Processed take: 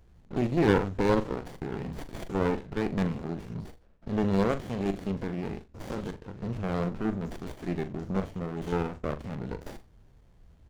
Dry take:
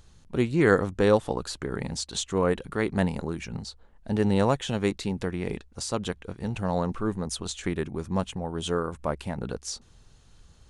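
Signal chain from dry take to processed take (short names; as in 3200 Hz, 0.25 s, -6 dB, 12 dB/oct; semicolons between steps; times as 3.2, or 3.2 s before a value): stepped spectrum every 50 ms; downsampling 16000 Hz; on a send: flutter echo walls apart 7 m, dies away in 0.22 s; on the sum: running maximum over 33 samples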